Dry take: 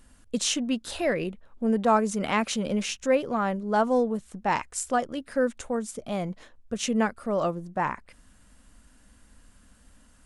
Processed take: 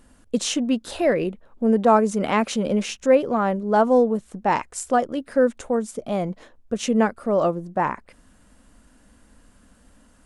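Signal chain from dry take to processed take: bell 430 Hz +7 dB 2.9 oct

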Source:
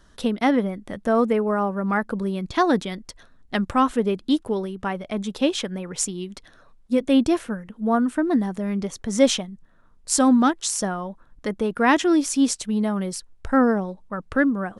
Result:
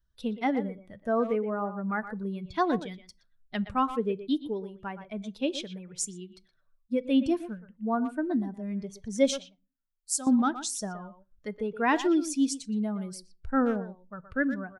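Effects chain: per-bin expansion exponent 1.5; 9.31–10.27 pre-emphasis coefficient 0.8; speakerphone echo 0.12 s, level -11 dB; on a send at -19 dB: reverb RT60 0.30 s, pre-delay 3 ms; on the sum: gain -5 dB

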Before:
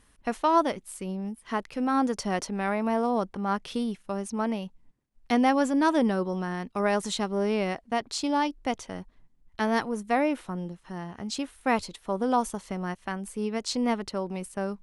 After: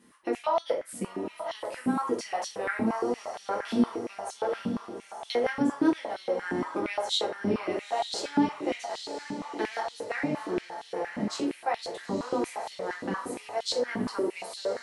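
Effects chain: octaver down 1 oct, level -1 dB; compressor 2.5:1, threshold -34 dBFS, peak gain reduction 12 dB; diffused feedback echo 0.917 s, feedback 52%, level -8 dB; shoebox room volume 40 m³, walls mixed, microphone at 0.86 m; stepped high-pass 8.6 Hz 230–3500 Hz; gain -3.5 dB

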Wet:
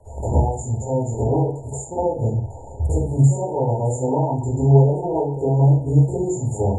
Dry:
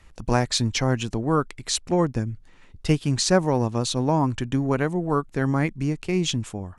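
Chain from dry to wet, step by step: ten-band EQ 125 Hz +5 dB, 250 Hz -9 dB, 500 Hz +8 dB, 1000 Hz +10 dB, 2000 Hz +10 dB, 4000 Hz +9 dB, 8000 Hz +10 dB; compressor 12:1, threshold -31 dBFS, peak gain reduction 26 dB; band noise 460–3700 Hz -51 dBFS; brick-wall FIR band-stop 960–6800 Hz; reverb RT60 0.45 s, pre-delay 48 ms, DRR -12.5 dB; gain -7.5 dB

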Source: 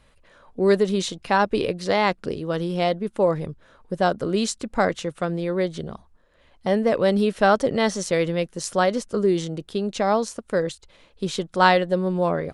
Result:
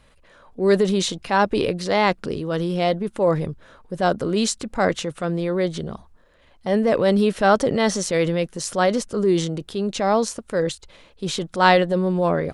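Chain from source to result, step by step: transient shaper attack -5 dB, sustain +3 dB; gain +2.5 dB

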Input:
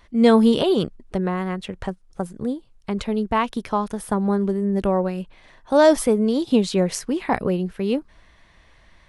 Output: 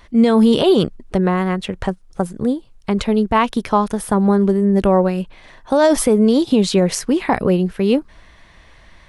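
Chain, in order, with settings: limiter -12 dBFS, peak gain reduction 9 dB; gain +7 dB

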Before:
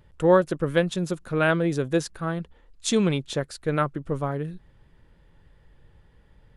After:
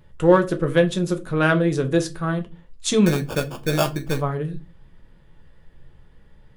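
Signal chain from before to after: in parallel at -11 dB: overloaded stage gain 16 dB; 3.06–4.2 on the sum: sample-rate reducer 2000 Hz, jitter 0%; reverb RT60 0.25 s, pre-delay 5 ms, DRR 5.5 dB

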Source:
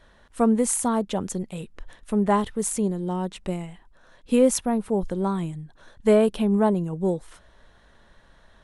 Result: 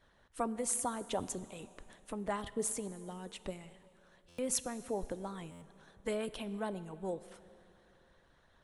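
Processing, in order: harmonic-percussive split harmonic -13 dB; plate-style reverb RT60 2.7 s, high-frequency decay 0.8×, DRR 14.5 dB; stuck buffer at 4.28/5.51, samples 512, times 8; gain -6.5 dB

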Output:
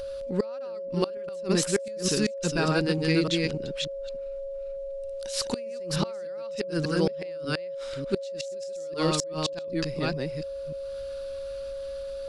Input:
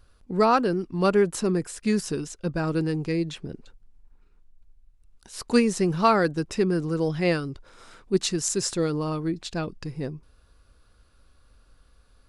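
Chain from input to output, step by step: reverse delay 0.298 s, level -1.5 dB; bell 3900 Hz +11.5 dB 2.3 oct; upward compressor, threshold -38 dBFS; flipped gate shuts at -11 dBFS, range -31 dB; whine 550 Hz -31 dBFS; gain -1.5 dB

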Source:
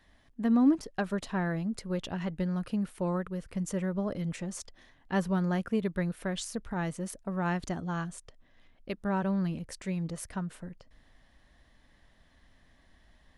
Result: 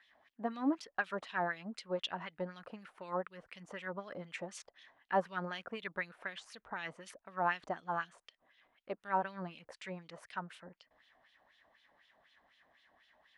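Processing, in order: wah 4 Hz 670–3400 Hz, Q 2.3; gain +5.5 dB

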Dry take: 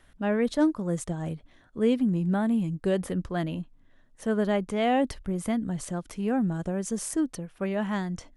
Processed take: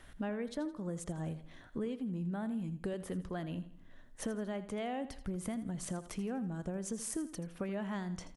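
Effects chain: compressor 8:1, threshold -39 dBFS, peak gain reduction 20 dB; feedback echo 82 ms, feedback 41%, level -14 dB; gain +3 dB

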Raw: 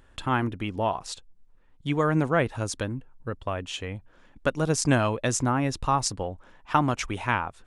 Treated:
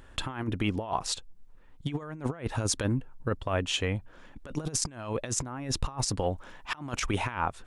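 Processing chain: 6.17–7.02 high shelf 2100 Hz +5 dB; negative-ratio compressor -30 dBFS, ratio -0.5

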